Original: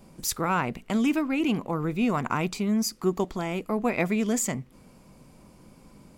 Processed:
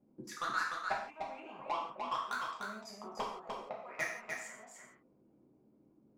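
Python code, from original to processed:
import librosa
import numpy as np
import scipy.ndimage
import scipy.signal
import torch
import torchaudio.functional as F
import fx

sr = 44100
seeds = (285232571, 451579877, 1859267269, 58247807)

y = fx.peak_eq(x, sr, hz=350.0, db=-10.0, octaves=0.29)
y = fx.hpss(y, sr, part='harmonic', gain_db=-11)
y = fx.auto_wah(y, sr, base_hz=300.0, top_hz=1800.0, q=3.8, full_db=-25.5, direction='up')
y = fx.level_steps(y, sr, step_db=19)
y = fx.transient(y, sr, attack_db=8, sustain_db=-10)
y = 10.0 ** (-34.0 / 20.0) * np.tanh(y / 10.0 ** (-34.0 / 20.0))
y = y + 10.0 ** (-4.5 / 20.0) * np.pad(y, (int(299 * sr / 1000.0), 0))[:len(y)]
y = fx.rev_gated(y, sr, seeds[0], gate_ms=200, shape='falling', drr_db=-4.0)
y = F.gain(torch.from_numpy(y), 1.0).numpy()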